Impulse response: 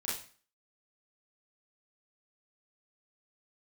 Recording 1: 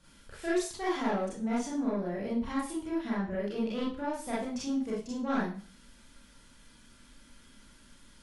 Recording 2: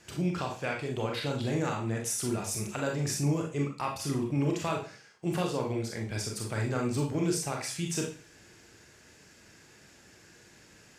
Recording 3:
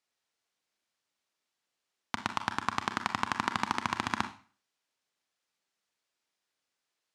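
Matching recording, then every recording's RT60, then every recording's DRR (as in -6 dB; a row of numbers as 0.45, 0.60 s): 1; 0.40, 0.40, 0.40 s; -8.0, 0.0, 8.0 dB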